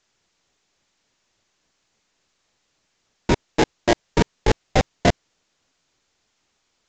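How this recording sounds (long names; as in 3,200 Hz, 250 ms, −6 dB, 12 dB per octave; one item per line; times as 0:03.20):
aliases and images of a low sample rate 1,300 Hz, jitter 20%
tremolo saw up 3.5 Hz, depth 100%
a quantiser's noise floor 12 bits, dither triangular
mu-law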